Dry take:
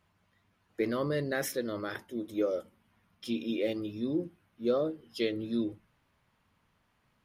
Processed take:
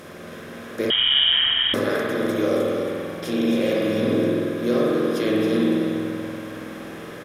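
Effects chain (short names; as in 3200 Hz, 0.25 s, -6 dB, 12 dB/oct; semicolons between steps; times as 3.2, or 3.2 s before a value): per-bin compression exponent 0.4; on a send: echo 0.272 s -7 dB; on the sum: spring tank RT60 2.3 s, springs 47 ms, chirp 55 ms, DRR -3.5 dB; 0.9–1.74 inverted band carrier 3500 Hz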